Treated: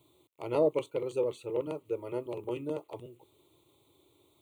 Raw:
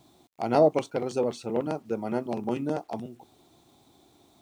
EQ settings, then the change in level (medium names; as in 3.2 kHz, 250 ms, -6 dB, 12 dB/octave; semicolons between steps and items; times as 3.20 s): high-pass 75 Hz; peaking EQ 1.4 kHz -6 dB 1.2 oct; static phaser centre 1.1 kHz, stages 8; -1.5 dB